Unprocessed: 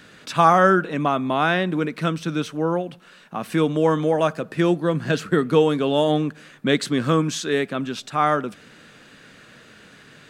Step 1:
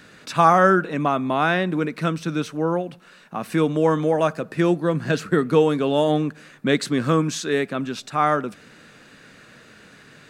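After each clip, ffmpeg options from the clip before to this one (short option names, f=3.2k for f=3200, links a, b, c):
-af "equalizer=f=3.2k:w=5.7:g=-5"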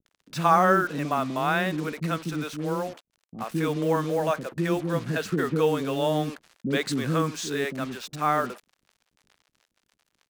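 -filter_complex "[0:a]acrusher=bits=5:mix=0:aa=0.5,acrossover=split=390[a][b];[b]adelay=60[c];[a][c]amix=inputs=2:normalize=0,volume=-4dB"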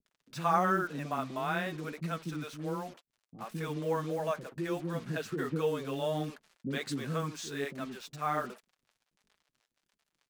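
-af "flanger=delay=4.5:depth=3.9:regen=-23:speed=1.4:shape=sinusoidal,volume=-5dB"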